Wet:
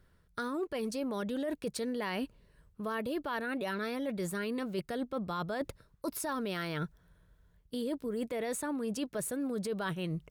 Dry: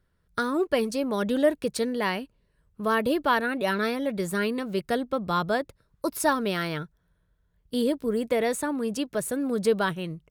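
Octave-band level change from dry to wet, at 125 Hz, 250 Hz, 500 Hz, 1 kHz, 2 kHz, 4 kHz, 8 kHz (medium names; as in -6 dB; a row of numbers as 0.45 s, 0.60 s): -5.0 dB, -7.5 dB, -10.0 dB, -11.0 dB, -10.0 dB, -9.0 dB, -6.0 dB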